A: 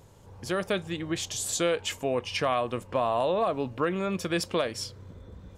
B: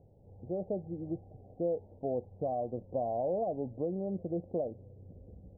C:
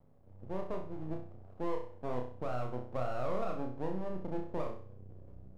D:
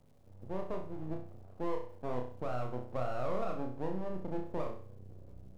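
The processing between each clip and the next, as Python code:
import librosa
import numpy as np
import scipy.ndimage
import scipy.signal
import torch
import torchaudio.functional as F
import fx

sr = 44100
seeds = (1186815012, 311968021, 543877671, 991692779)

y1 = scipy.signal.sosfilt(scipy.signal.cheby1(6, 1.0, 780.0, 'lowpass', fs=sr, output='sos'), x)
y1 = y1 * librosa.db_to_amplitude(-5.0)
y2 = np.maximum(y1, 0.0)
y2 = fx.room_flutter(y2, sr, wall_m=5.5, rt60_s=0.45)
y2 = y2 * librosa.db_to_amplitude(-1.5)
y3 = fx.dmg_crackle(y2, sr, seeds[0], per_s=360.0, level_db=-64.0)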